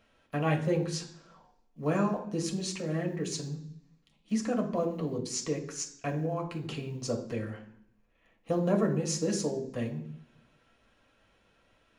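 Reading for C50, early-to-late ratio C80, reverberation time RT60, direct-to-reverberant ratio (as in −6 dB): 10.5 dB, 13.5 dB, 0.65 s, 0.0 dB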